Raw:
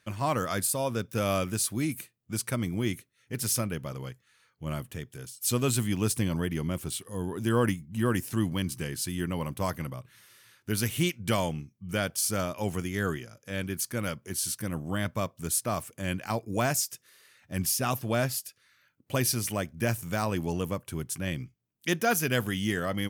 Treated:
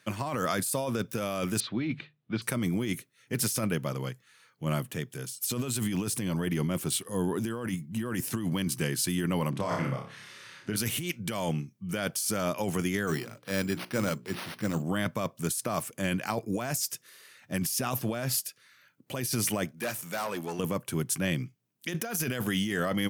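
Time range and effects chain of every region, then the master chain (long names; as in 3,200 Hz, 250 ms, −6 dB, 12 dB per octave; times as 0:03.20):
0:01.60–0:02.42: Chebyshev low-pass filter 3,900 Hz, order 4 + mains-hum notches 50/100/150 Hz
0:09.50–0:10.76: upward compression, threshold −44 dBFS + high-frequency loss of the air 83 metres + flutter between parallel walls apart 5 metres, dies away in 0.45 s
0:13.07–0:14.83: de-essing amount 100% + bad sample-rate conversion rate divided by 6×, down none, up hold + mains-hum notches 60/120/180/240/300/360/420 Hz
0:19.71–0:20.59: high-pass filter 430 Hz 6 dB per octave + tube saturation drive 32 dB, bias 0.45
whole clip: high-pass filter 120 Hz 24 dB per octave; compressor whose output falls as the input rises −32 dBFS, ratio −1; level +2.5 dB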